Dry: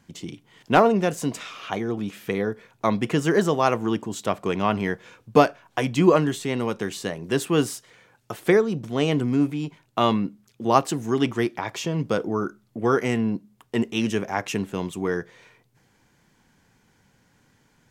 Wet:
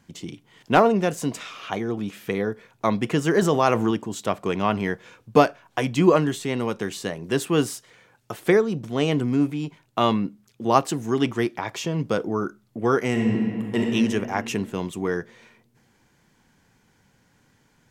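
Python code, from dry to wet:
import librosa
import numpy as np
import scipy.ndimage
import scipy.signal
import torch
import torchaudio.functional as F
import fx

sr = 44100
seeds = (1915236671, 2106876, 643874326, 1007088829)

y = fx.env_flatten(x, sr, amount_pct=50, at=(3.42, 3.91))
y = fx.reverb_throw(y, sr, start_s=13.1, length_s=0.81, rt60_s=2.4, drr_db=-1.0)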